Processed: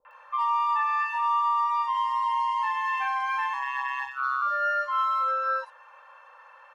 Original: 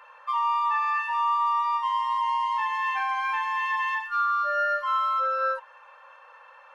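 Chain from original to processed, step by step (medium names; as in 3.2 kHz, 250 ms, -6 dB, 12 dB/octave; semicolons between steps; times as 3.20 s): 2.10–2.75 s: high-pass 77 Hz; 3.48–4.37 s: ring modulator 66 Hz; three bands offset in time lows, mids, highs 50/110 ms, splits 420/3200 Hz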